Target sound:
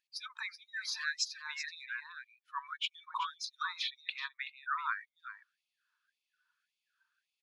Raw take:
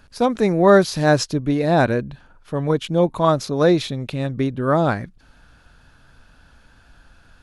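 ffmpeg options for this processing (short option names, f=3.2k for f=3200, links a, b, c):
-filter_complex "[0:a]asettb=1/sr,asplit=3[a][b][c];[a]atrim=end=3.814[d];[b]atrim=start=3.81:end=4.79,asetpts=PTS-STARTPTS,afade=t=in:d=0.004:c=qsin,afade=t=out:st=0.976:d=0.004:c=qsin,bass=f=250:g=2,treble=f=4k:g=-5[e];[c]atrim=start=4.786[f];[d][e]acrossfade=d=0.004:c1=hsin:c2=qsin[g];[g][f]acrossfade=d=0.004:c1=qsin:c2=hsin,acrossover=split=330[h][i];[i]acompressor=threshold=-23dB:ratio=6[j];[h][j]amix=inputs=2:normalize=0,highshelf=f=7.7k:g=-3.5,afftdn=nr=25:nf=-39,aecho=1:1:379:0.282,afftfilt=real='re*gte(b*sr/1024,870*pow(2100/870,0.5+0.5*sin(2*PI*1.8*pts/sr)))':imag='im*gte(b*sr/1024,870*pow(2100/870,0.5+0.5*sin(2*PI*1.8*pts/sr)))':win_size=1024:overlap=0.75"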